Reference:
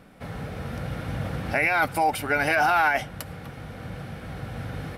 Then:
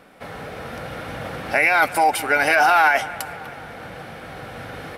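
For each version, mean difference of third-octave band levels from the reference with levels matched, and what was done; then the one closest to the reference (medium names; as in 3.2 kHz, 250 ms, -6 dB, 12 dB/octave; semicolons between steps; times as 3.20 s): 3.0 dB: tone controls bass -13 dB, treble -2 dB; bucket-brigade echo 192 ms, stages 4096, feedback 69%, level -18.5 dB; dynamic bell 7.9 kHz, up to +5 dB, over -48 dBFS, Q 0.81; trim +5.5 dB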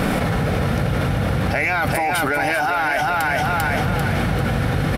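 7.5 dB: saturation -13 dBFS, distortion -22 dB; feedback delay 394 ms, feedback 38%, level -5.5 dB; level flattener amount 100%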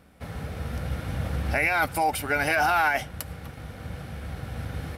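1.5 dB: peaking EQ 71 Hz +14.5 dB 0.34 oct; in parallel at -4 dB: crossover distortion -44.5 dBFS; on the sum: treble shelf 4.9 kHz +6 dB; trim -6 dB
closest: third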